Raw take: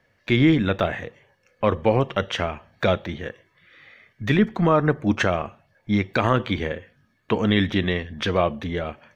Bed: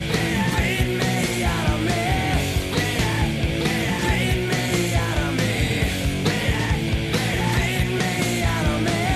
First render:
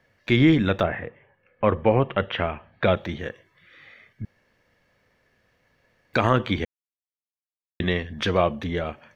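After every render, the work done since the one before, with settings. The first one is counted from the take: 0.82–2.95 s: low-pass 2.3 kHz -> 3.6 kHz 24 dB/octave; 4.25–6.13 s: room tone; 6.65–7.80 s: mute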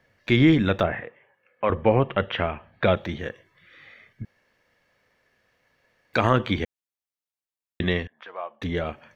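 1.00–1.70 s: high-pass 540 Hz 6 dB/octave; 4.23–6.18 s: bass shelf 310 Hz -7.5 dB; 8.07–8.62 s: ladder band-pass 1.1 kHz, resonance 25%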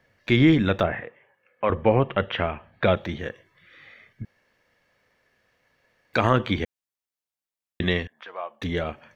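7.82–8.84 s: treble shelf 3.4 kHz +5 dB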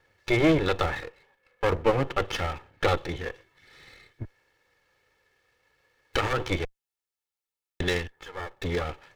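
comb filter that takes the minimum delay 2.3 ms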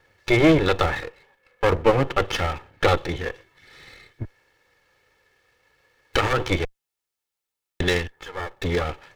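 trim +5 dB

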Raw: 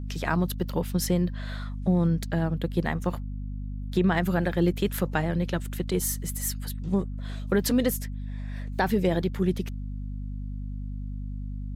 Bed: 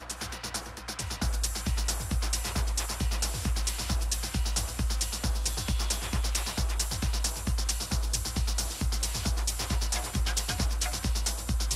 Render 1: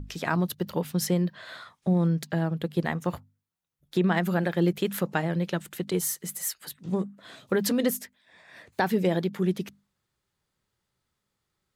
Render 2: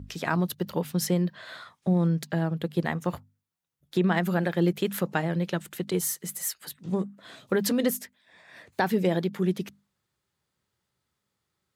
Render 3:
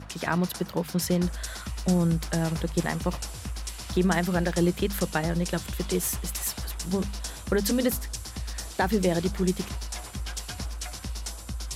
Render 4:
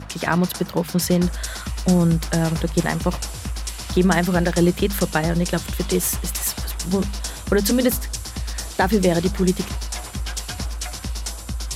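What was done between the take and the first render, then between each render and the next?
hum notches 50/100/150/200/250 Hz
high-pass 60 Hz
add bed -5.5 dB
trim +6.5 dB

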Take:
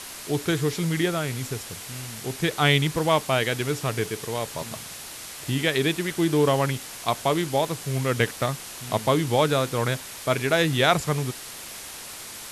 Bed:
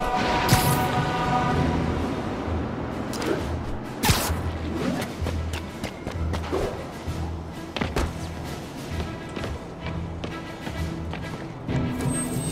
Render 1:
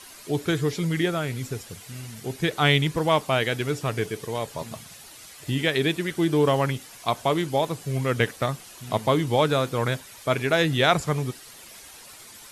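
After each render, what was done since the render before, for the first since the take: noise reduction 10 dB, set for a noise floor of -39 dBFS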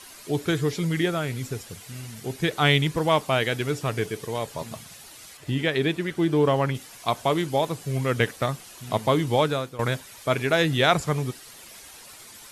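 5.37–6.75 s: treble shelf 4.3 kHz -8.5 dB; 9.38–9.79 s: fade out, to -15.5 dB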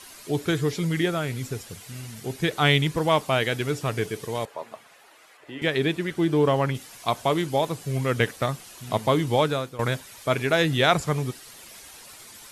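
4.45–5.62 s: three-band isolator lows -24 dB, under 340 Hz, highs -15 dB, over 2.5 kHz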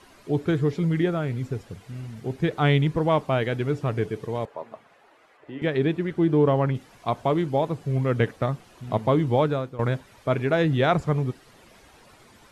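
low-pass 1.2 kHz 6 dB/octave; bass shelf 430 Hz +3 dB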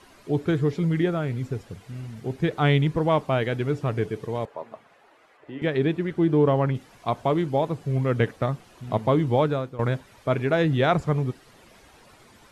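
no audible change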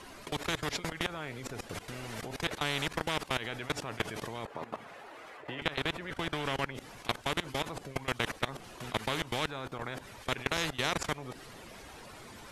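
level held to a coarse grid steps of 22 dB; spectrum-flattening compressor 4:1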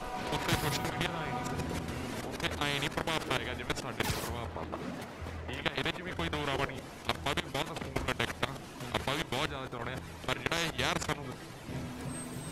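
add bed -14.5 dB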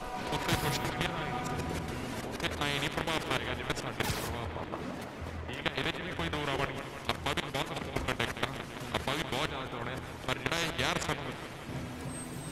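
bucket-brigade echo 167 ms, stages 4096, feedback 70%, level -11 dB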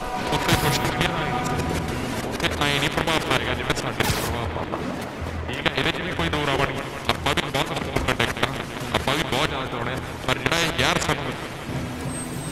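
trim +10.5 dB

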